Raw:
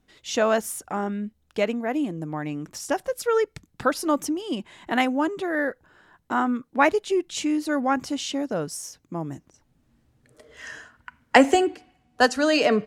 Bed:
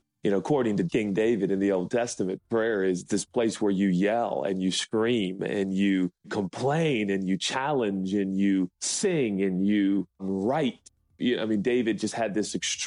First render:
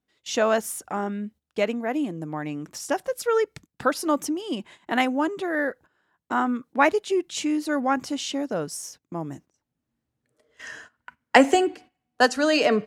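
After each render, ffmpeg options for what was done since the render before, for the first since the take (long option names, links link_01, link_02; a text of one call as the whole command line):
ffmpeg -i in.wav -af "agate=range=-14dB:threshold=-45dB:ratio=16:detection=peak,highpass=frequency=120:poles=1" out.wav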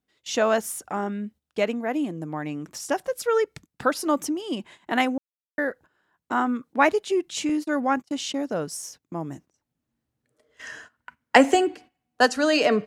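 ffmpeg -i in.wav -filter_complex "[0:a]asettb=1/sr,asplit=3[link_01][link_02][link_03];[link_01]atrim=end=7.494[link_04];[link_02]atrim=start=7.49:end=8.42,asetpts=PTS-STARTPTS,afade=type=in:duration=0.004:curve=qsin,afade=type=out:start_time=0.926:duration=0.004:curve=qsin,agate=range=-36dB:threshold=-34dB:ratio=16:release=100:detection=peak[link_05];[link_03]atrim=start=8.416[link_06];[link_04][link_05]acrossfade=duration=0.004:curve1=hsin:curve2=qsin[link_07];[link_07][link_06]acrossfade=duration=0.004:curve1=qsin:curve2=hsin,asplit=3[link_08][link_09][link_10];[link_08]atrim=end=5.18,asetpts=PTS-STARTPTS,afade=type=out:start_time=5.176:duration=0.004:curve=hsin[link_11];[link_09]atrim=start=5.18:end=5.58,asetpts=PTS-STARTPTS,volume=0[link_12];[link_10]atrim=start=5.58,asetpts=PTS-STARTPTS,afade=type=in:duration=0.004:curve=hsin[link_13];[link_11][link_12][link_13]concat=n=3:v=0:a=1" out.wav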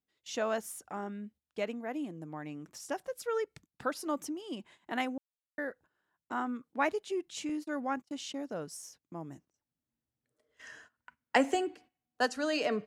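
ffmpeg -i in.wav -af "volume=-11dB" out.wav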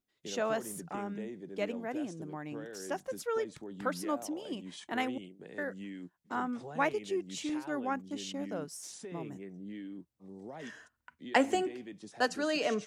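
ffmpeg -i in.wav -i bed.wav -filter_complex "[1:a]volume=-20dB[link_01];[0:a][link_01]amix=inputs=2:normalize=0" out.wav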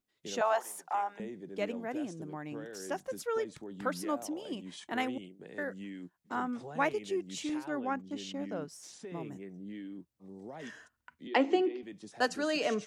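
ffmpeg -i in.wav -filter_complex "[0:a]asettb=1/sr,asplit=3[link_01][link_02][link_03];[link_01]atrim=end=0.414[link_04];[link_02]atrim=start=0.41:end=1.2,asetpts=PTS-STARTPTS,afade=type=in:duration=0.004:curve=qsin,afade=type=out:start_time=0.786:duration=0.004:curve=qsin,highpass=frequency=830:width_type=q:width=3.8[link_05];[link_03]atrim=start=1.196[link_06];[link_04][link_05]acrossfade=duration=0.004:curve1=hsin:curve2=qsin[link_07];[link_07][link_06]acrossfade=duration=0.004:curve1=qsin:curve2=hsin,asettb=1/sr,asplit=3[link_08][link_09][link_10];[link_08]atrim=end=7.684[link_11];[link_09]atrim=start=7.68:end=9.07,asetpts=PTS-STARTPTS,afade=type=in:duration=0.004:curve=qsin,afade=type=out:start_time=1.386:duration=0.004:curve=qsin,equalizer=frequency=11000:width=0.63:gain=-8.5[link_12];[link_10]atrim=start=9.066[link_13];[link_11][link_12]acrossfade=duration=0.004:curve1=hsin:curve2=qsin[link_14];[link_14][link_13]acrossfade=duration=0.004:curve1=qsin:curve2=hsin,asettb=1/sr,asplit=3[link_15][link_16][link_17];[link_15]atrim=end=11.274[link_18];[link_16]atrim=start=11.27:end=11.83,asetpts=PTS-STARTPTS,afade=type=in:duration=0.004:curve=qsin,afade=type=out:start_time=0.556:duration=0.004:curve=qsin,highpass=frequency=260:width=0.5412,highpass=frequency=260:width=1.3066,equalizer=frequency=330:width_type=q:width=4:gain=9,equalizer=frequency=650:width_type=q:width=4:gain=-4,equalizer=frequency=1600:width_type=q:width=4:gain=-8,lowpass=frequency=4700:width=0.5412,lowpass=frequency=4700:width=1.3066[link_19];[link_17]atrim=start=11.826[link_20];[link_18][link_19]acrossfade=duration=0.004:curve1=hsin:curve2=qsin[link_21];[link_21][link_20]acrossfade=duration=0.004:curve1=qsin:curve2=hsin" out.wav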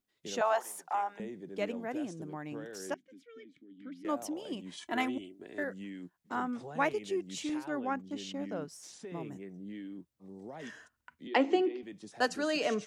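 ffmpeg -i in.wav -filter_complex "[0:a]asettb=1/sr,asplit=3[link_01][link_02][link_03];[link_01]atrim=end=2.944[link_04];[link_02]atrim=start=2.94:end=4.05,asetpts=PTS-STARTPTS,afade=type=in:duration=0.004:curve=qsin,afade=type=out:start_time=1.106:duration=0.004:curve=qsin,asplit=3[link_05][link_06][link_07];[link_05]bandpass=frequency=270:width_type=q:width=8,volume=0dB[link_08];[link_06]bandpass=frequency=2290:width_type=q:width=8,volume=-6dB[link_09];[link_07]bandpass=frequency=3010:width_type=q:width=8,volume=-9dB[link_10];[link_08][link_09][link_10]amix=inputs=3:normalize=0[link_11];[link_03]atrim=start=4.046[link_12];[link_04][link_11]acrossfade=duration=0.004:curve1=hsin:curve2=qsin[link_13];[link_13][link_12]acrossfade=duration=0.004:curve1=qsin:curve2=hsin,asettb=1/sr,asplit=3[link_14][link_15][link_16];[link_14]atrim=end=4.774[link_17];[link_15]atrim=start=4.77:end=5.64,asetpts=PTS-STARTPTS,afade=type=in:duration=0.004:curve=qsin,afade=type=out:start_time=0.866:duration=0.004:curve=qsin,aecho=1:1:3:0.65,atrim=end_sample=38367[link_18];[link_16]atrim=start=5.636[link_19];[link_17][link_18]acrossfade=duration=0.004:curve1=hsin:curve2=qsin[link_20];[link_20][link_19]acrossfade=duration=0.004:curve1=qsin:curve2=hsin" out.wav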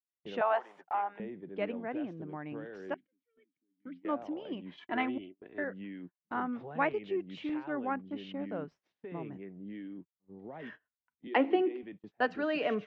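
ffmpeg -i in.wav -af "agate=range=-27dB:threshold=-47dB:ratio=16:detection=peak,lowpass=frequency=2900:width=0.5412,lowpass=frequency=2900:width=1.3066" out.wav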